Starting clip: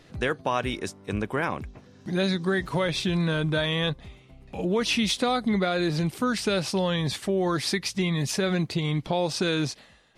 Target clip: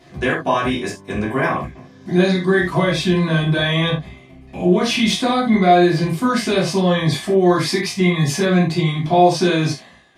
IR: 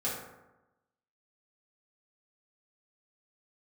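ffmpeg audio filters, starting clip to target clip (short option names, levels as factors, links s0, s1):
-filter_complex "[1:a]atrim=start_sample=2205,atrim=end_sample=6174,asetrate=61740,aresample=44100[s0];[0:a][s0]afir=irnorm=-1:irlink=0,volume=1.88"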